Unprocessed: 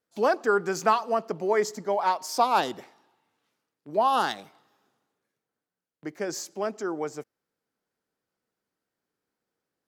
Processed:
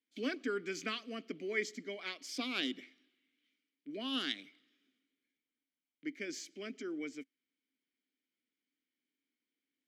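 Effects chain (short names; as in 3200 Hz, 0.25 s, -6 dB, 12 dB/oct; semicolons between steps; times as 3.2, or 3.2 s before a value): vowel filter i; tilt +2.5 dB/oct; gain +7.5 dB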